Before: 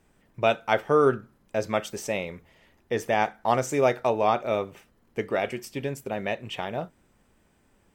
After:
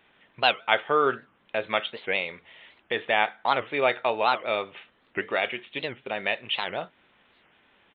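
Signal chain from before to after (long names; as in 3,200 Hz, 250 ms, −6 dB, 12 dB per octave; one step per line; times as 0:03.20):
spectral tilt +4.5 dB per octave
in parallel at 0 dB: downward compressor, threshold −39 dBFS, peak gain reduction 21 dB
on the sum: downsampling to 8,000 Hz
wow of a warped record 78 rpm, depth 250 cents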